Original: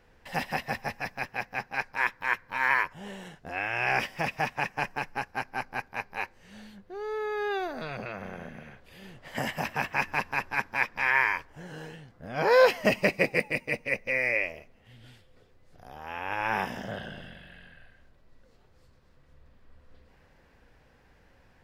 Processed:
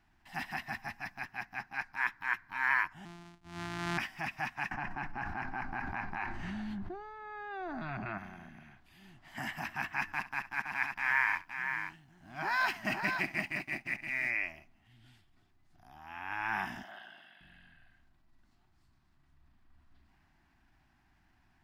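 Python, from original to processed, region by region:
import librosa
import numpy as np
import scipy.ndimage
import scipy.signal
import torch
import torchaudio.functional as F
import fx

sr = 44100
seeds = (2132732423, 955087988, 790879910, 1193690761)

y = fx.chain(x, sr, fx.sample_sort(block=256),
    fx.air_absorb(metres=60.0), at=(3.05, 3.98))
y = fx.chain(y, sr, fx.lowpass(hz=1000.0, slope=6),
    fx.env_flatten(amount_pct=100), at=(4.71, 8.18))
y = fx.chain(y, sr, fx.law_mismatch(coded='A'),
    fx.echo_multitap(ms=(67, 518), db=(-19.0, -7.0)), at=(10.12, 14.3))
y = fx.chain(y, sr, fx.highpass(hz=580.0, slope=12),
    fx.peak_eq(hz=7200.0, db=-8.0, octaves=0.97), at=(16.83, 17.41))
y = scipy.signal.sosfilt(scipy.signal.cheby1(2, 1.0, [340.0, 710.0], 'bandstop', fs=sr, output='sos'), y)
y = fx.dynamic_eq(y, sr, hz=1600.0, q=1.5, threshold_db=-42.0, ratio=4.0, max_db=6)
y = fx.transient(y, sr, attack_db=-3, sustain_db=2)
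y = F.gain(torch.from_numpy(y), -7.5).numpy()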